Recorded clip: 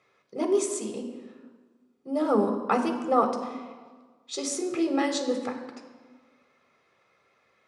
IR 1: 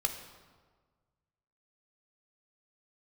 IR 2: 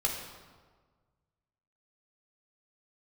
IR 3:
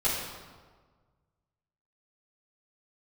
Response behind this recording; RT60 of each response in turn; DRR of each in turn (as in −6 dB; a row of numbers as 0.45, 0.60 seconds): 1; 1.5, 1.5, 1.5 seconds; 4.5, −1.0, −10.5 decibels